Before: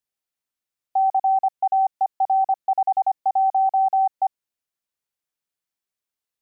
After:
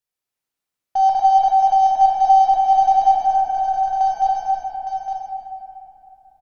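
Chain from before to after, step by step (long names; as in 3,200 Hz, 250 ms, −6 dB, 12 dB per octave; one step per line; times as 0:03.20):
0:01.09–0:01.52: downward expander −21 dBFS
0:03.19–0:04.01: compressor whose output falls as the input rises −31 dBFS, ratio −1
harmonic generator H 7 −37 dB, 8 −29 dB, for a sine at −14.5 dBFS
multi-tap delay 237/278/861 ms −8/−7/−7 dB
convolution reverb RT60 3.3 s, pre-delay 6 ms, DRR −2.5 dB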